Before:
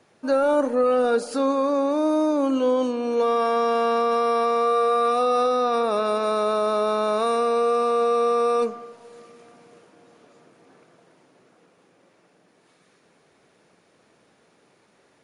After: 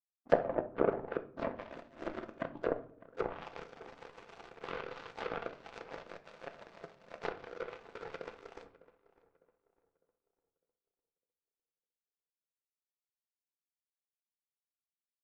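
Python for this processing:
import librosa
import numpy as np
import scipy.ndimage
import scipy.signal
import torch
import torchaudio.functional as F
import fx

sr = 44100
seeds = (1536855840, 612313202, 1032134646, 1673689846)

p1 = fx.wiener(x, sr, points=41)
p2 = fx.dereverb_blind(p1, sr, rt60_s=1.8)
p3 = fx.noise_vocoder(p2, sr, seeds[0], bands=16)
p4 = fx.highpass(p3, sr, hz=320.0, slope=6)
p5 = fx.power_curve(p4, sr, exponent=3.0)
p6 = fx.env_lowpass_down(p5, sr, base_hz=820.0, full_db=-38.5)
p7 = p6 + fx.echo_filtered(p6, sr, ms=604, feedback_pct=39, hz=1600.0, wet_db=-18.0, dry=0)
p8 = fx.room_shoebox(p7, sr, seeds[1], volume_m3=510.0, walls='furnished', distance_m=0.76)
y = F.gain(torch.from_numpy(p8), 7.5).numpy()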